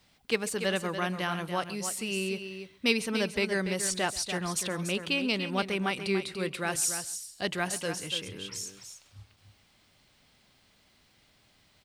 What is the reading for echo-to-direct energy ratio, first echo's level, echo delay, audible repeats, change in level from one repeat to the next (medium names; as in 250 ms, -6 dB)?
-8.5 dB, -20.5 dB, 134 ms, 3, no regular repeats